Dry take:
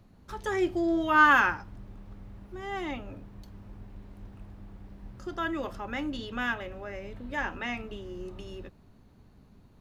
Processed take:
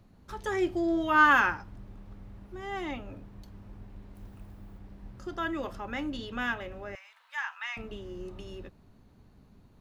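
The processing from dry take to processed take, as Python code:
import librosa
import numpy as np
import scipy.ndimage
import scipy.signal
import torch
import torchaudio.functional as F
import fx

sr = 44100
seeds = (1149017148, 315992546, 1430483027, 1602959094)

y = fx.high_shelf(x, sr, hz=fx.line((4.14, 7700.0), (4.77, 11000.0)), db=12.0, at=(4.14, 4.77), fade=0.02)
y = fx.steep_highpass(y, sr, hz=930.0, slope=36, at=(6.95, 7.77))
y = F.gain(torch.from_numpy(y), -1.0).numpy()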